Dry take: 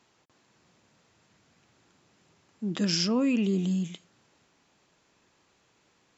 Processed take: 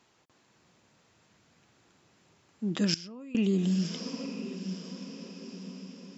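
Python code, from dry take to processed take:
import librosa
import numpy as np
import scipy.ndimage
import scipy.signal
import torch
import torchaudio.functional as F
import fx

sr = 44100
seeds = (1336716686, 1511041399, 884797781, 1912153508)

y = fx.echo_diffused(x, sr, ms=1009, feedback_pct=52, wet_db=-11.5)
y = fx.level_steps(y, sr, step_db=22, at=(2.94, 3.35))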